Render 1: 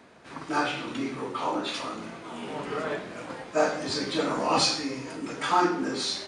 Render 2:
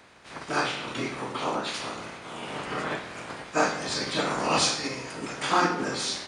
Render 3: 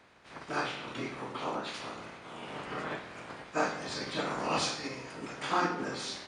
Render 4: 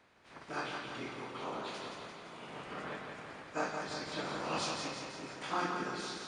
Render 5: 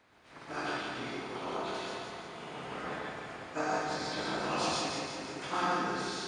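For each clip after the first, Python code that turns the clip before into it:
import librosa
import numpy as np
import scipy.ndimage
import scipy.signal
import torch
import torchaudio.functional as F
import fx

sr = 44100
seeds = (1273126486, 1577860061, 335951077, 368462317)

y1 = fx.spec_clip(x, sr, under_db=13)
y2 = fx.high_shelf(y1, sr, hz=6200.0, db=-8.5)
y2 = F.gain(torch.from_numpy(y2), -6.0).numpy()
y3 = fx.echo_feedback(y2, sr, ms=171, feedback_pct=59, wet_db=-5.0)
y3 = F.gain(torch.from_numpy(y3), -6.0).numpy()
y4 = fx.rev_gated(y3, sr, seeds[0], gate_ms=160, shape='rising', drr_db=-1.5)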